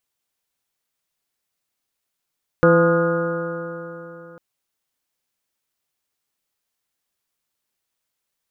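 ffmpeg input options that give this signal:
-f lavfi -i "aevalsrc='0.15*pow(10,-3*t/3.39)*sin(2*PI*167.2*t)+0.126*pow(10,-3*t/3.39)*sin(2*PI*335.6*t)+0.266*pow(10,-3*t/3.39)*sin(2*PI*506.38*t)+0.0266*pow(10,-3*t/3.39)*sin(2*PI*680.7*t)+0.0316*pow(10,-3*t/3.39)*sin(2*PI*859.69*t)+0.0355*pow(10,-3*t/3.39)*sin(2*PI*1044.39*t)+0.0944*pow(10,-3*t/3.39)*sin(2*PI*1235.83*t)+0.1*pow(10,-3*t/3.39)*sin(2*PI*1434.94*t)+0.0224*pow(10,-3*t/3.39)*sin(2*PI*1642.61*t)':d=1.75:s=44100"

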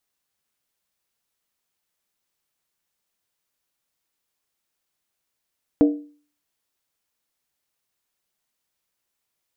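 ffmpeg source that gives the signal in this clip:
-f lavfi -i "aevalsrc='0.355*pow(10,-3*t/0.43)*sin(2*PI*294*t)+0.141*pow(10,-3*t/0.341)*sin(2*PI*468.6*t)+0.0562*pow(10,-3*t/0.294)*sin(2*PI*628*t)+0.0224*pow(10,-3*t/0.284)*sin(2*PI*675*t)+0.00891*pow(10,-3*t/0.264)*sin(2*PI*780*t)':d=0.63:s=44100"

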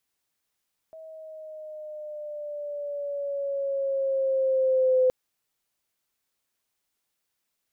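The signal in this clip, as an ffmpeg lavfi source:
-f lavfi -i "aevalsrc='pow(10,(-17+24*(t/4.17-1))/20)*sin(2*PI*643*4.17/(-4*log(2)/12)*(exp(-4*log(2)/12*t/4.17)-1))':d=4.17:s=44100"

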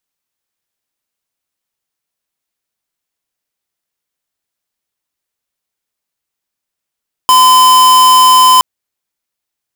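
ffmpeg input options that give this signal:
-f lavfi -i "aevalsrc='0.531*(2*lt(mod(1020*t,1),0.5)-1)':d=1.32:s=44100"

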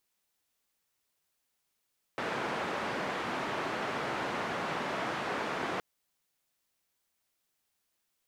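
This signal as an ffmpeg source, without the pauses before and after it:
-f lavfi -i "anoisesrc=c=white:d=3.62:r=44100:seed=1,highpass=f=160,lowpass=f=1400,volume=-17.7dB"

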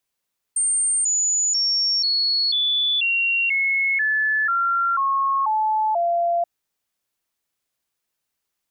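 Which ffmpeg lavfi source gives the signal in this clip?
-f lavfi -i "aevalsrc='0.133*clip(min(mod(t,0.49),0.49-mod(t,0.49))/0.005,0,1)*sin(2*PI*8730*pow(2,-floor(t/0.49)/3)*mod(t,0.49))':d=5.88:s=44100"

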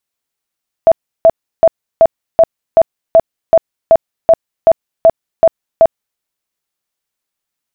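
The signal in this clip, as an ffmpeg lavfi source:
-f lavfi -i "aevalsrc='0.794*sin(2*PI*658*mod(t,0.38))*lt(mod(t,0.38),31/658)':d=5.32:s=44100"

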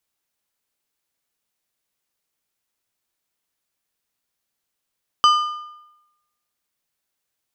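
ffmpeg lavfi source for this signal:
-f lavfi -i "aevalsrc='0.355*pow(10,-3*t/0.94)*sin(2*PI*1210*t)+0.15*pow(10,-3*t/0.714)*sin(2*PI*3025*t)+0.0631*pow(10,-3*t/0.62)*sin(2*PI*4840*t)+0.0266*pow(10,-3*t/0.58)*sin(2*PI*6050*t)+0.0112*pow(10,-3*t/0.536)*sin(2*PI*7865*t)':d=1.55:s=44100"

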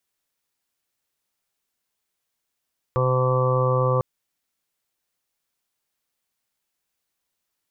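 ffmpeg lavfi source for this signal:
-f lavfi -i "aevalsrc='0.0891*sin(2*PI*128*t)+0.00944*sin(2*PI*256*t)+0.0335*sin(2*PI*384*t)+0.0794*sin(2*PI*512*t)+0.0112*sin(2*PI*640*t)+0.0112*sin(2*PI*768*t)+0.0211*sin(2*PI*896*t)+0.0266*sin(2*PI*1024*t)+0.0501*sin(2*PI*1152*t)':d=1.05:s=44100"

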